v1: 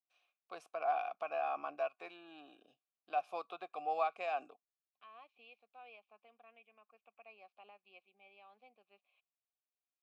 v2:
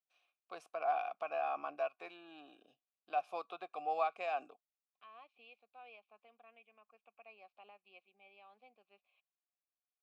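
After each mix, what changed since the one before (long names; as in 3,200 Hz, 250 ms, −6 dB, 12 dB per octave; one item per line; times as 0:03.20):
nothing changed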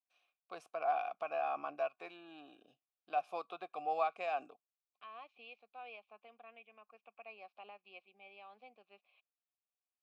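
first voice: remove high-pass filter 220 Hz 6 dB per octave
second voice +5.5 dB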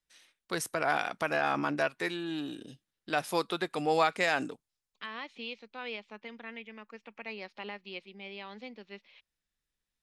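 master: remove formant filter a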